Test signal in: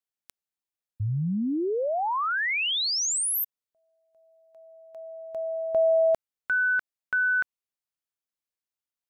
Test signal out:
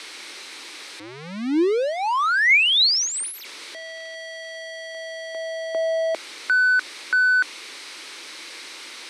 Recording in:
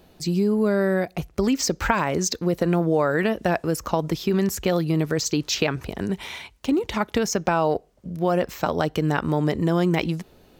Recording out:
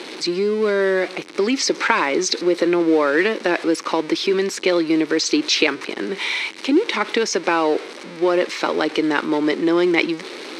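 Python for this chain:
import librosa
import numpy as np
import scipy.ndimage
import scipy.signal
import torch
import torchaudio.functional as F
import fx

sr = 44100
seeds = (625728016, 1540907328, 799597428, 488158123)

y = x + 0.5 * 10.0 ** (-30.5 / 20.0) * np.sign(x)
y = fx.cabinet(y, sr, low_hz=290.0, low_slope=24, high_hz=8100.0, hz=(330.0, 690.0, 2200.0, 4000.0, 7100.0), db=(5, -9, 7, 5, -8))
y = y * 10.0 ** (4.0 / 20.0)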